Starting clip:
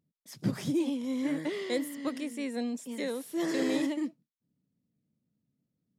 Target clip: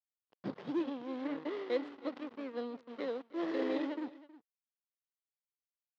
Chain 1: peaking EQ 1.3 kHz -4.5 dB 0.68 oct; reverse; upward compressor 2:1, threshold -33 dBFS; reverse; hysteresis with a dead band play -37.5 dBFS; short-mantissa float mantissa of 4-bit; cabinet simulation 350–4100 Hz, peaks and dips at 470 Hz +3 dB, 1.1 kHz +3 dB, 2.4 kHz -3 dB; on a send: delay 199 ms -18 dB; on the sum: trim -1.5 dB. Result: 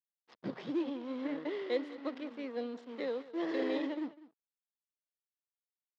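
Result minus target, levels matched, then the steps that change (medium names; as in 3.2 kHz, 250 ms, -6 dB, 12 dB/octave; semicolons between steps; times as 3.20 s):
echo 120 ms early; hysteresis with a dead band: distortion -6 dB
change: hysteresis with a dead band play -31 dBFS; change: delay 319 ms -18 dB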